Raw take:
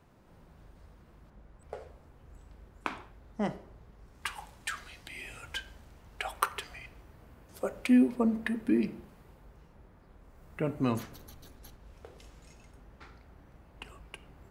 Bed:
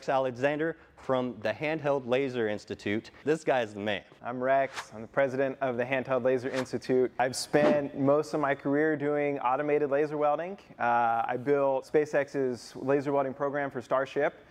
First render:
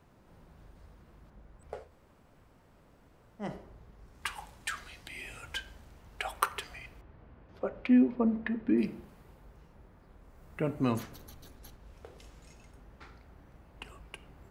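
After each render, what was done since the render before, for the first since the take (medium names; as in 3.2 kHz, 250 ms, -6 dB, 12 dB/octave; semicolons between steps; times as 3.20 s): 1.85–3.45 s: room tone, crossfade 0.16 s; 7.01–8.78 s: distance through air 290 m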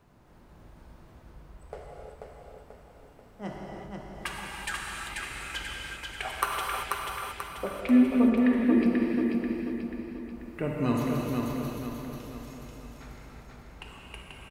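feedback delay 487 ms, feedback 48%, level -3.5 dB; gated-style reverb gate 410 ms flat, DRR -1.5 dB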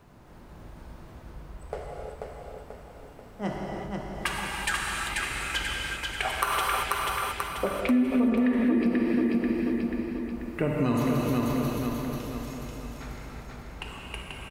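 in parallel at +0.5 dB: peak limiter -19 dBFS, peak gain reduction 10 dB; on the sum: compression 3:1, threshold -22 dBFS, peak gain reduction 8 dB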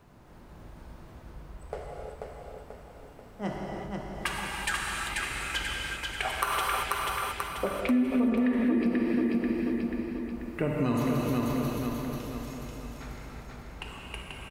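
trim -2 dB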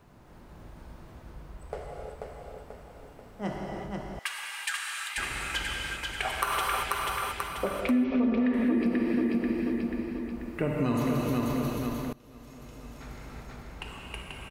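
4.19–5.18 s: high-pass 1.5 kHz; 8.04–8.54 s: Chebyshev low-pass 5.7 kHz, order 5; 12.13–13.39 s: fade in, from -24 dB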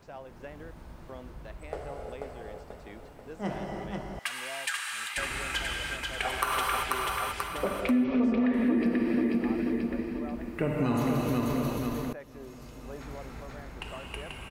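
add bed -17.5 dB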